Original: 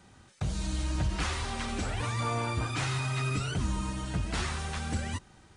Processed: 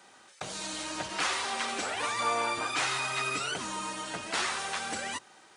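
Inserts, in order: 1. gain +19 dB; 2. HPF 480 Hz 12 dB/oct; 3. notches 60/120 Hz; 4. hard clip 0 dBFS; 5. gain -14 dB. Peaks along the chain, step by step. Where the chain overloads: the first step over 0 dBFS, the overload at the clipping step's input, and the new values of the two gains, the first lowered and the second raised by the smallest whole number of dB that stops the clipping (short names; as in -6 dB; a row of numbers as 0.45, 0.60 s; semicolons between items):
-1.0, -3.0, -3.0, -3.0, -17.0 dBFS; no overload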